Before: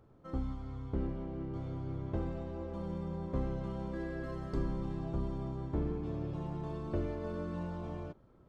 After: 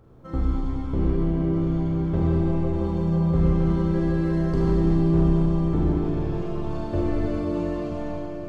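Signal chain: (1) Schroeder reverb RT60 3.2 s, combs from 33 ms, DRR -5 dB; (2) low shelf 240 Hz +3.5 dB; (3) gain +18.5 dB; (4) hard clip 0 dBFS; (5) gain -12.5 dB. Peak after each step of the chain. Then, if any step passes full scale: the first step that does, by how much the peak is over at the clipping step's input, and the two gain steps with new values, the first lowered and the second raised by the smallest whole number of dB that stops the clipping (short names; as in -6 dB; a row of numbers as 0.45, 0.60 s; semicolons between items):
-17.0, -14.0, +4.5, 0.0, -12.5 dBFS; step 3, 4.5 dB; step 3 +13.5 dB, step 5 -7.5 dB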